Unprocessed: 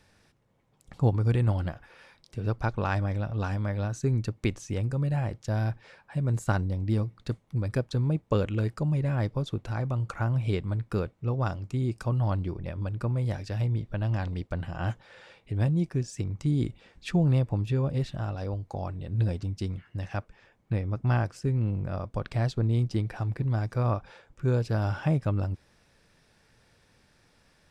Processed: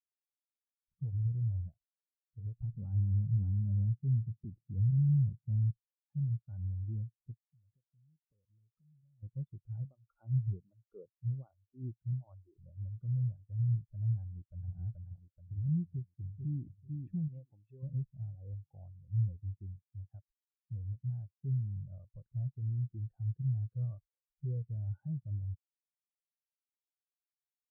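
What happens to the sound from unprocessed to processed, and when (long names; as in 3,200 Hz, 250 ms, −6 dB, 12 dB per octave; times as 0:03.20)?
0:02.59–0:05.71: parametric band 180 Hz +14 dB 2.9 octaves
0:07.46–0:09.23: downward compressor 16 to 1, threshold −39 dBFS
0:09.85–0:12.58: phaser with staggered stages 1.3 Hz
0:14.20–0:14.76: delay throw 430 ms, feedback 65%, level −1.5 dB
0:15.88–0:16.64: delay throw 440 ms, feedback 45%, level −6 dB
0:17.28–0:17.83: spectral tilt +4 dB per octave
whole clip: low-pass filter 1,400 Hz 6 dB per octave; brickwall limiter −22.5 dBFS; every bin expanded away from the loudest bin 2.5 to 1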